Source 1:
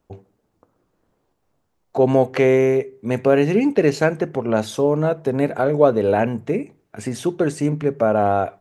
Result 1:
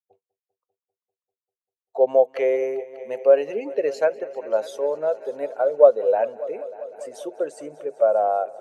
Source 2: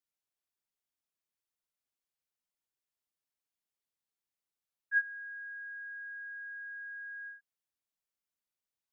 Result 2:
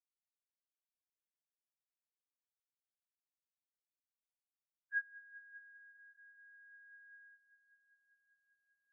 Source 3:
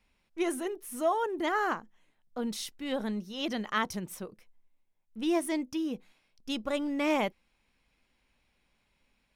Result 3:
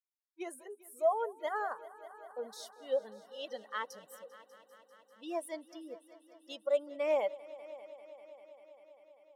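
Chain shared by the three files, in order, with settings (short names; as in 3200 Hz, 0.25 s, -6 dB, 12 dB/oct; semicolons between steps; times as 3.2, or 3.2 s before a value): per-bin expansion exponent 1.5; spectral noise reduction 17 dB; resonant high-pass 550 Hz, resonance Q 4.9; on a send: multi-head echo 0.197 s, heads all three, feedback 67%, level -23 dB; on the sum: gain -8 dB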